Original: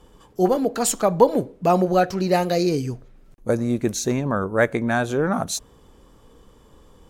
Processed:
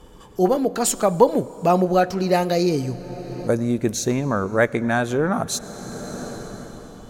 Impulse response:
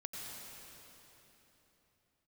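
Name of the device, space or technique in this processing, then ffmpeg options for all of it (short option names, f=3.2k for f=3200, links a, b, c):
ducked reverb: -filter_complex "[0:a]asplit=3[a][b][c];[1:a]atrim=start_sample=2205[d];[b][d]afir=irnorm=-1:irlink=0[e];[c]apad=whole_len=312893[f];[e][f]sidechaincompress=threshold=-42dB:ratio=4:attack=37:release=543,volume=3dB[g];[a][g]amix=inputs=2:normalize=0"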